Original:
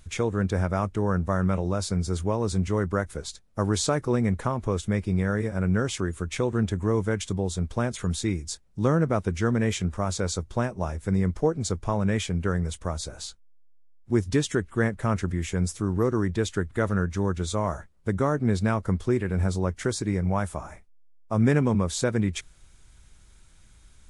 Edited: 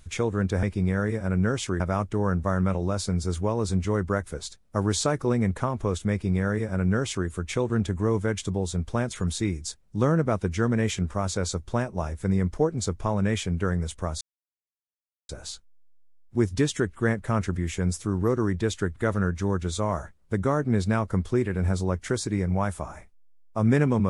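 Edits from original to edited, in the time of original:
4.94–6.11 copy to 0.63
13.04 insert silence 1.08 s

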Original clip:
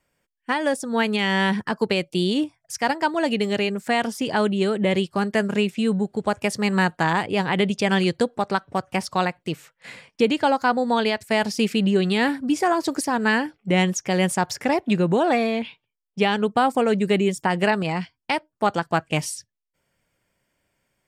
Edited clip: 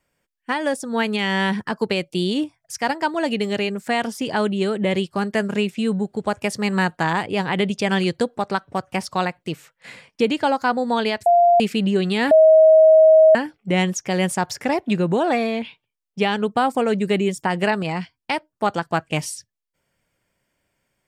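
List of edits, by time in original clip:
11.26–11.6 bleep 695 Hz -10.5 dBFS
12.31–13.35 bleep 634 Hz -7.5 dBFS

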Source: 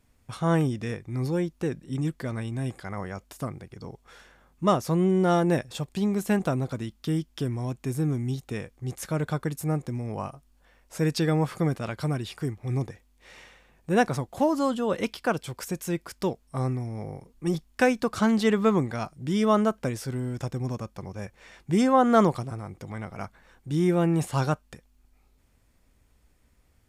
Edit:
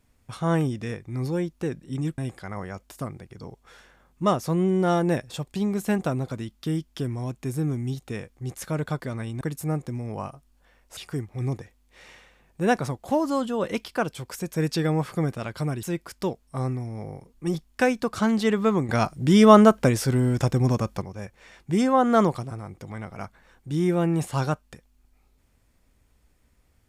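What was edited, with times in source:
2.18–2.59 move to 9.41
10.97–12.26 move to 15.83
18.89–21.02 gain +9 dB

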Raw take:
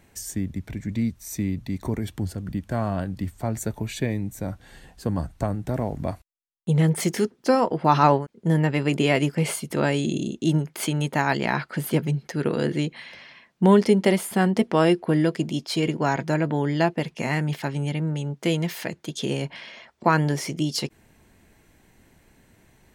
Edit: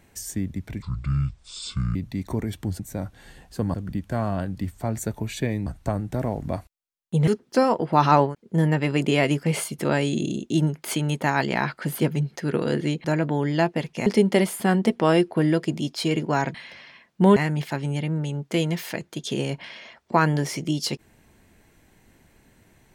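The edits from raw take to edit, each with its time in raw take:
0.82–1.5 speed 60%
4.26–5.21 move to 2.34
6.82–7.19 cut
12.96–13.78 swap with 16.26–17.28

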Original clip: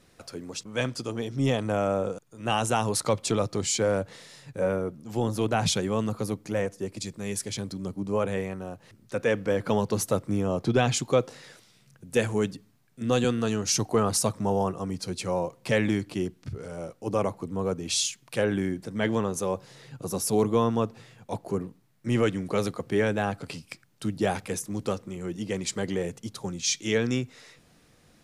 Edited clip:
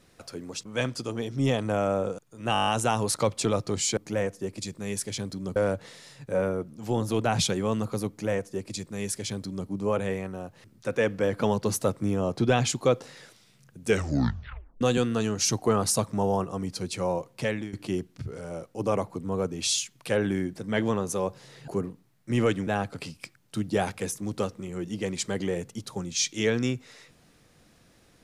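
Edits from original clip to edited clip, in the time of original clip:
2.53 stutter 0.02 s, 8 plays
6.36–7.95 copy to 3.83
12.1 tape stop 0.98 s
15.53–16 fade out linear, to -16 dB
19.95–21.45 cut
22.44–23.15 cut

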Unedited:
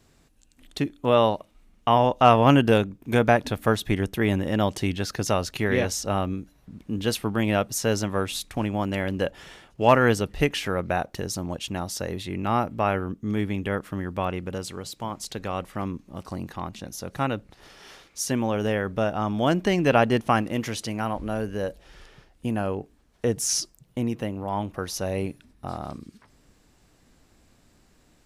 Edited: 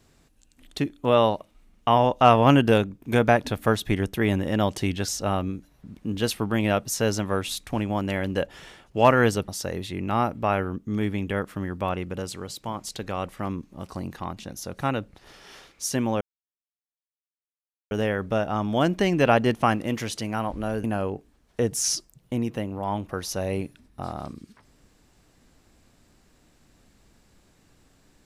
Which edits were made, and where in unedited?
5.08–5.92 cut
10.32–11.84 cut
18.57 insert silence 1.70 s
21.5–22.49 cut

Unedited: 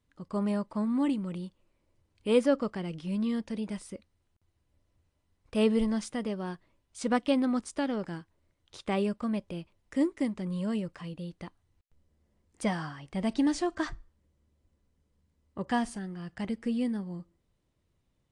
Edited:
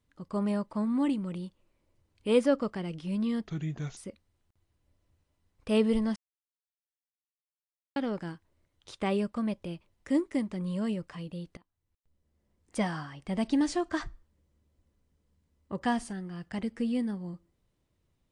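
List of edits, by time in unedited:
3.47–3.83 speed 72%
6.02–7.82 mute
11.43–12.68 fade in, from -22.5 dB

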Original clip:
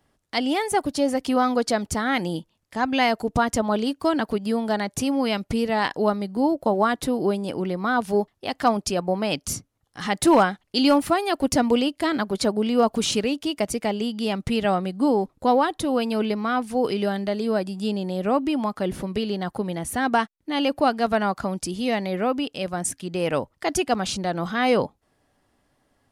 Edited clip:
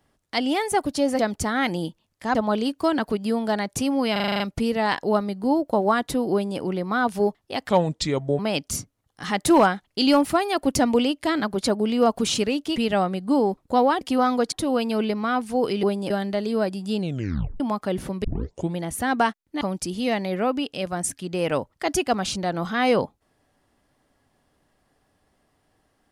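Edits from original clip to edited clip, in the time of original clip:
1.19–1.7 move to 15.73
2.86–3.56 cut
5.33 stutter 0.04 s, 8 plays
7.25–7.52 copy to 17.04
8.62–9.16 speed 77%
13.53–14.48 cut
17.92 tape stop 0.62 s
19.18 tape start 0.52 s
20.55–21.42 cut

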